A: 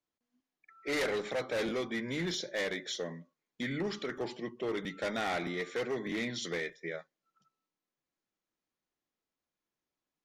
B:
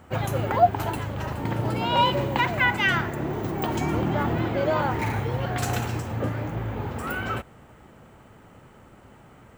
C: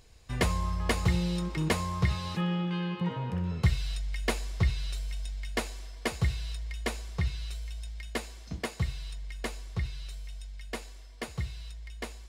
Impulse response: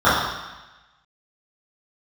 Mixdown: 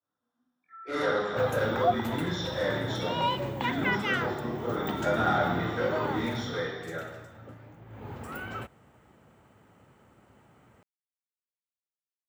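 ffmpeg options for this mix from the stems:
-filter_complex "[0:a]volume=-13.5dB,asplit=2[a][b];[b]volume=-7dB[c];[1:a]adelay=1250,volume=4dB,afade=t=out:st=6.06:d=0.71:silence=0.237137,afade=t=in:st=7.86:d=0.27:silence=0.266073[d];[3:a]atrim=start_sample=2205[e];[c][e]afir=irnorm=-1:irlink=0[f];[a][d][f]amix=inputs=3:normalize=0,highpass=67"

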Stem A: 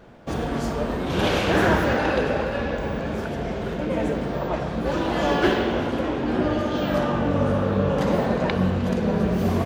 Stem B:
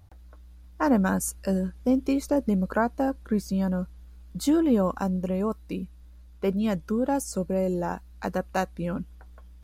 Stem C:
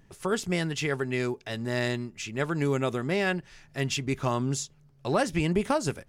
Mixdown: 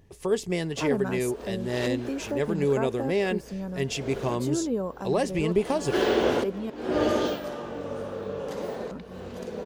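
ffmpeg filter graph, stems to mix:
-filter_complex "[0:a]bass=f=250:g=-7,treble=f=4k:g=9,adelay=500,volume=-0.5dB,afade=t=in:st=5.8:d=0.47:silence=0.398107,afade=t=out:st=7.2:d=0.2:silence=0.237137[a];[1:a]volume=-9dB,asplit=3[b][c][d];[b]atrim=end=6.7,asetpts=PTS-STARTPTS,afade=t=out:st=6.696:d=0.004:c=hsin[e];[c]atrim=start=6.7:end=8.91,asetpts=PTS-STARTPTS,volume=0[f];[d]atrim=start=8.91,asetpts=PTS-STARTPTS,afade=t=in:d=0.004:c=hsin[g];[e][f][g]concat=n=3:v=0:a=1,asplit=2[h][i];[2:a]equalizer=f=1.4k:w=5.7:g=-14.5,volume=-2dB[j];[i]apad=whole_len=447724[k];[a][k]sidechaincompress=threshold=-49dB:ratio=8:attack=8.9:release=241[l];[l][h][j]amix=inputs=3:normalize=0,equalizer=f=430:t=o:w=0.59:g=7.5"

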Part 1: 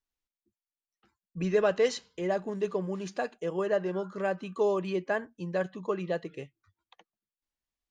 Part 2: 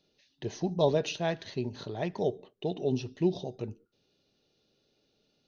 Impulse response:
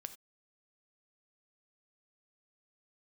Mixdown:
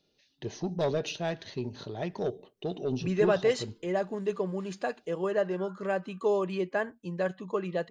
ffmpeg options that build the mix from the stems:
-filter_complex "[0:a]bandreject=f=5.8k:w=10,adelay=1650,volume=0dB[a];[1:a]asoftclip=type=tanh:threshold=-20.5dB,volume=-0.5dB[b];[a][b]amix=inputs=2:normalize=0"

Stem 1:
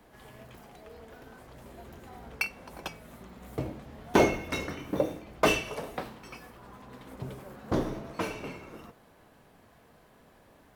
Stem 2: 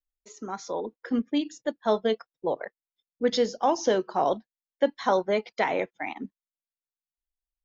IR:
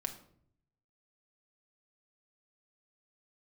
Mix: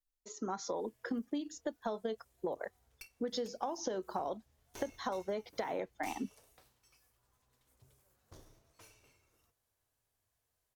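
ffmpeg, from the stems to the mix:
-filter_complex "[0:a]firequalizer=gain_entry='entry(110,0);entry(170,-17);entry(370,-10);entry(6300,10)':delay=0.05:min_phase=1,aeval=exprs='(tanh(8.91*val(0)+0.7)-tanh(0.7))/8.91':c=same,adelay=600,volume=-18dB[a];[1:a]equalizer=f=2.4k:t=o:w=0.72:g=-8,acompressor=threshold=-32dB:ratio=6,volume=0dB[b];[a][b]amix=inputs=2:normalize=0,acompressor=threshold=-32dB:ratio=6"

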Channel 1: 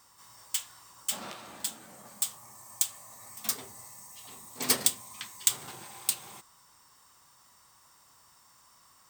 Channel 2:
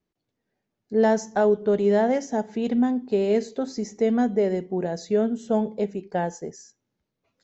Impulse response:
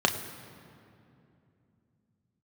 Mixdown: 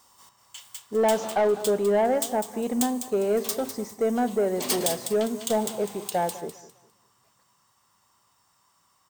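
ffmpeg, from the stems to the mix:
-filter_complex "[0:a]volume=1dB,asplit=3[a][b][c];[b]volume=-20.5dB[d];[c]volume=-10dB[e];[1:a]equalizer=f=850:t=o:w=2.3:g=10,acrusher=bits=10:mix=0:aa=0.000001,volume=-6.5dB,asplit=3[f][g][h];[g]volume=-18dB[i];[h]apad=whole_len=401213[j];[a][j]sidechaingate=range=-33dB:threshold=-40dB:ratio=16:detection=peak[k];[2:a]atrim=start_sample=2205[l];[d][l]afir=irnorm=-1:irlink=0[m];[e][i]amix=inputs=2:normalize=0,aecho=0:1:202|404|606|808:1|0.26|0.0676|0.0176[n];[k][f][m][n]amix=inputs=4:normalize=0,asoftclip=type=tanh:threshold=-15.5dB"

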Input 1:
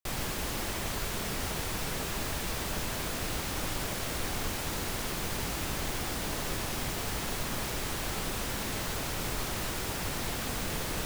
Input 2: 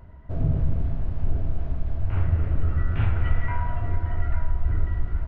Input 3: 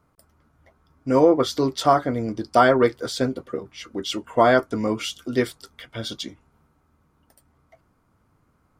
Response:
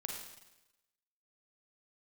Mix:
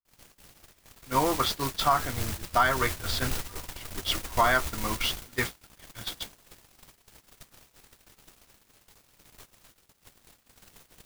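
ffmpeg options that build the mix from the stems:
-filter_complex "[0:a]highshelf=f=2.9k:g=3.5,acrusher=bits=4:mix=0:aa=0.000001,volume=-2.5dB[a];[1:a]volume=-13dB,afade=t=in:st=1.61:d=0.52:silence=0.281838[b];[2:a]equalizer=f=250:t=o:w=1:g=-8,equalizer=f=500:t=o:w=1:g=-12,equalizer=f=1k:t=o:w=1:g=5,equalizer=f=2k:t=o:w=1:g=4,equalizer=f=4k:t=o:w=1:g=4,equalizer=f=8k:t=o:w=1:g=-9,volume=-2dB[c];[a][b][c]amix=inputs=3:normalize=0,agate=range=-37dB:threshold=-28dB:ratio=16:detection=peak,alimiter=limit=-11dB:level=0:latency=1:release=339"

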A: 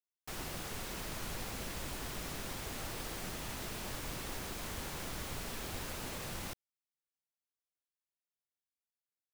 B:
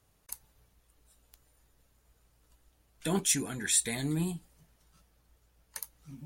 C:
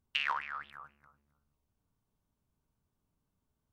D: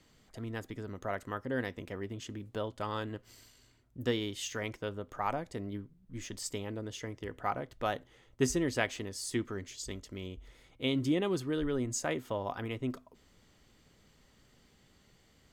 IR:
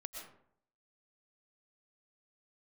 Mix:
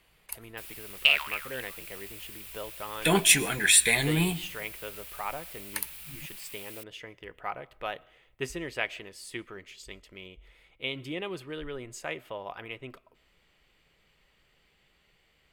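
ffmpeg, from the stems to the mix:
-filter_complex "[0:a]aderivative,adelay=300,volume=0.5dB[a];[1:a]dynaudnorm=f=200:g=7:m=6.5dB,volume=2.5dB,asplit=2[b][c];[c]volume=-13.5dB[d];[2:a]aexciter=amount=4.7:drive=8:freq=2.4k,adelay=900,volume=-6.5dB[e];[3:a]volume=-2.5dB,asplit=2[f][g];[g]volume=-19dB[h];[4:a]atrim=start_sample=2205[i];[d][h]amix=inputs=2:normalize=0[j];[j][i]afir=irnorm=-1:irlink=0[k];[a][b][e][f][k]amix=inputs=5:normalize=0,equalizer=f=100:t=o:w=0.67:g=-11,equalizer=f=250:t=o:w=0.67:g=-11,equalizer=f=2.5k:t=o:w=0.67:g=9,equalizer=f=6.3k:t=o:w=0.67:g=-9"

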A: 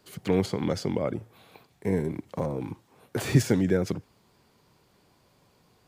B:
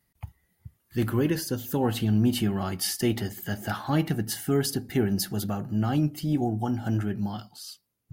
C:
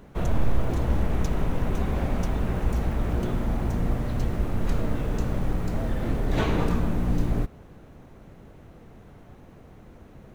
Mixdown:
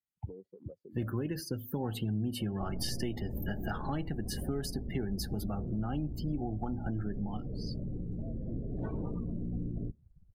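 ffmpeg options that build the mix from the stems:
-filter_complex "[0:a]afwtdn=0.0251,highpass=f=570:p=1,acompressor=threshold=-30dB:ratio=6,volume=-11.5dB[a];[1:a]volume=0dB[b];[2:a]lowshelf=f=290:g=8.5,adelay=2450,volume=-12.5dB[c];[a][b][c]amix=inputs=3:normalize=0,afftdn=nr=31:nf=-37,acrossover=split=98|6100[d][e][f];[d]acompressor=threshold=-41dB:ratio=4[g];[e]acompressor=threshold=-34dB:ratio=4[h];[f]acompressor=threshold=-47dB:ratio=4[i];[g][h][i]amix=inputs=3:normalize=0"

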